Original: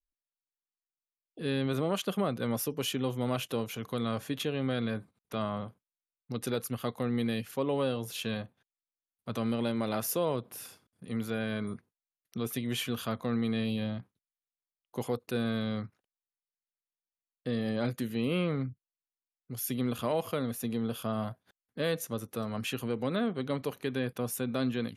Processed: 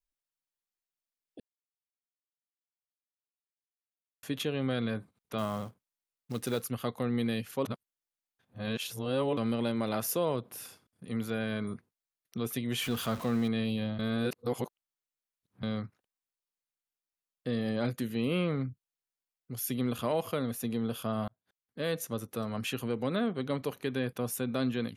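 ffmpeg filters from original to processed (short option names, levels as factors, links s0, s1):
-filter_complex "[0:a]asettb=1/sr,asplit=3[s0][s1][s2];[s0]atrim=end=5.384[s3];[s1]atrim=start=5.38:end=6.69,asetpts=PTS-STARTPTS,afade=t=in:d=0.004:c=qsin,afade=t=out:st=1.306:d=0.004:c=qsin,acrusher=bits=5:mode=log:mix=0:aa=0.000001[s4];[s2]atrim=start=6.686[s5];[s3][s4]acrossfade=d=0.004:c1=hsin:c2=qsin[s6];[s6][s5]acrossfade=d=0.004:c1=qsin:c2=hsin,asettb=1/sr,asplit=3[s7][s8][s9];[s7]atrim=end=12.824[s10];[s8]atrim=start=12.82:end=13.48,asetpts=PTS-STARTPTS,afade=t=in:d=0.004:c=qsin,afade=t=out:st=0.656:d=0.004:c=qsin,aeval=exprs='val(0)+0.5*0.0119*sgn(val(0))':c=same[s11];[s9]atrim=start=13.476[s12];[s10][s11]acrossfade=d=0.004:c1=hsin:c2=qsin[s13];[s13][s12]acrossfade=d=0.004:c1=qsin:c2=hsin,asplit=8[s14][s15][s16][s17][s18][s19][s20][s21];[s14]atrim=end=1.4,asetpts=PTS-STARTPTS,afade=t=out:st=1.396:d=0.004:c=hsin[s22];[s15]atrim=start=1.4:end=4.23,asetpts=PTS-STARTPTS,volume=0[s23];[s16]atrim=start=4.23:end=7.652,asetpts=PTS-STARTPTS,afade=t=in:d=0.004:c=hsin[s24];[s17]atrim=start=7.648:end=9.372,asetpts=PTS-STARTPTS,areverse[s25];[s18]atrim=start=9.368:end=13.992[s26];[s19]atrim=start=13.988:end=15.632,asetpts=PTS-STARTPTS,areverse[s27];[s20]atrim=start=15.628:end=21.28,asetpts=PTS-STARTPTS,afade=t=out:st=5.648:d=0.004:c=hsin[s28];[s21]atrim=start=21.28,asetpts=PTS-STARTPTS,afade=t=in:d=0.74[s29];[s22][s23][s24]concat=n=3:v=0:a=1[s30];[s30][s25]acrossfade=d=0.004:c1=hsin:c2=hsin[s31];[s31][s26]acrossfade=d=0.004:c1=hsin:c2=hsin[s32];[s32][s27]acrossfade=d=0.004:c1=hsin:c2=hsin[s33];[s28][s29]concat=n=2:v=0:a=1[s34];[s33][s34]acrossfade=d=0.004:c1=hsin:c2=hsin"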